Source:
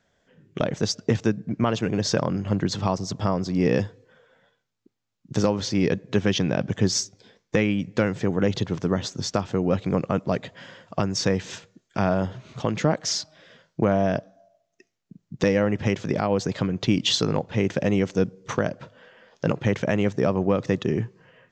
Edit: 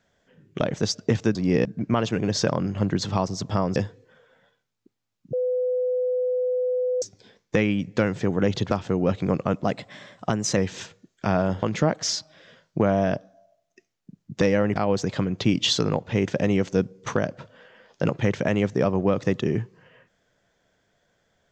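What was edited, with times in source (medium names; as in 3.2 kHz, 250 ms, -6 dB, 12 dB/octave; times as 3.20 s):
3.46–3.76 s: move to 1.35 s
5.33–7.02 s: bleep 502 Hz -21 dBFS
8.71–9.35 s: delete
10.28–11.29 s: speed 109%
12.35–12.65 s: delete
15.78–16.18 s: delete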